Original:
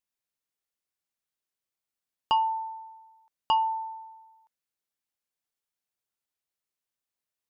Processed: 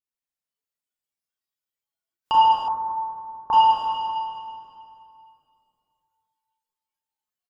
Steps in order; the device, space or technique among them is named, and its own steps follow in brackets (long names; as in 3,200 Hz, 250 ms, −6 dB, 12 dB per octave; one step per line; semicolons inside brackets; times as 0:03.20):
cave (single-tap delay 169 ms −12.5 dB; convolution reverb RT60 2.6 s, pre-delay 26 ms, DRR −7.5 dB)
0:02.68–0:03.53: Butterworth low-pass 1,700 Hz 48 dB per octave
noise reduction from a noise print of the clip's start 12 dB